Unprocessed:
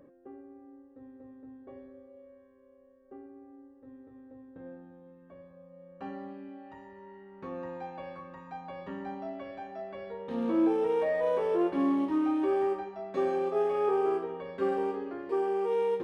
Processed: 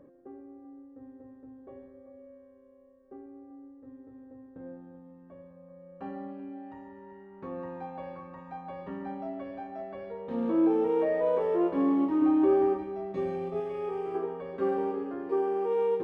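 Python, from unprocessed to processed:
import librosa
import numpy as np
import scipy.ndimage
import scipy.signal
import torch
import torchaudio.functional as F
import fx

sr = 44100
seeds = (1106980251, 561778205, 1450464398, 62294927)

y = fx.low_shelf(x, sr, hz=390.0, db=7.5, at=(12.22, 13.6))
y = y + 10.0 ** (-14.5 / 20.0) * np.pad(y, (int(144 * sr / 1000.0), 0))[:len(y)]
y = fx.spec_box(y, sr, start_s=12.78, length_s=1.37, low_hz=210.0, high_hz=1800.0, gain_db=-8)
y = fx.high_shelf(y, sr, hz=2200.0, db=-10.5)
y = y + 10.0 ** (-14.5 / 20.0) * np.pad(y, (int(385 * sr / 1000.0), 0))[:len(y)]
y = y * librosa.db_to_amplitude(1.5)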